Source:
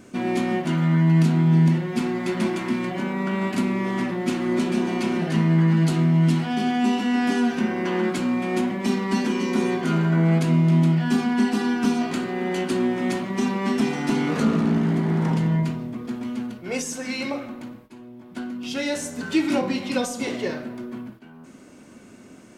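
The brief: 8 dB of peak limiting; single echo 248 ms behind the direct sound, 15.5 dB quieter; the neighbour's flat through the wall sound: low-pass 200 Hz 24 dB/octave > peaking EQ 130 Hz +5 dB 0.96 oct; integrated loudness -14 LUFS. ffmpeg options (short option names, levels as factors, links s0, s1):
-af "alimiter=limit=0.133:level=0:latency=1,lowpass=f=200:w=0.5412,lowpass=f=200:w=1.3066,equalizer=f=130:t=o:w=0.96:g=5,aecho=1:1:248:0.168,volume=4.47"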